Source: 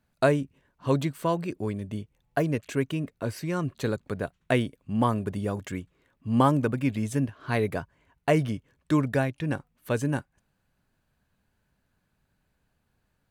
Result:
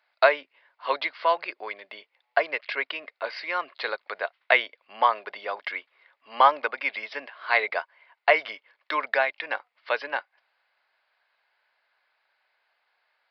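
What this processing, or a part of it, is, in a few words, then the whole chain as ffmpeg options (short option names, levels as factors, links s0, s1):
musical greeting card: -af "aresample=11025,aresample=44100,highpass=f=660:w=0.5412,highpass=f=660:w=1.3066,equalizer=f=2100:t=o:w=0.22:g=8.5,volume=2.37"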